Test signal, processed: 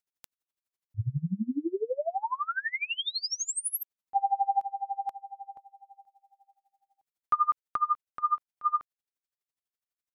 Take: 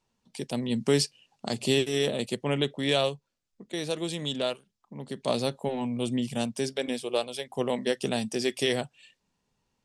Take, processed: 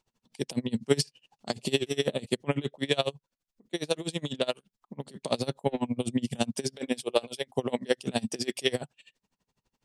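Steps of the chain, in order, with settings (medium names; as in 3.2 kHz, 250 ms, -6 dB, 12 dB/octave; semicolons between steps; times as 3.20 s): in parallel at +1 dB: gain riding within 4 dB 0.5 s; on the sum: logarithmic tremolo 12 Hz, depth 27 dB; trim -1.5 dB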